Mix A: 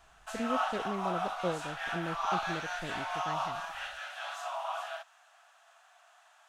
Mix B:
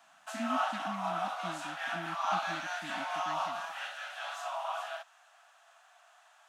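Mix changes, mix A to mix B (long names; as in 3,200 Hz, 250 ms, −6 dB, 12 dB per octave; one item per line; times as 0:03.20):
speech: add linear-phase brick-wall band-stop 330–1,500 Hz
master: add high-pass filter 200 Hz 24 dB per octave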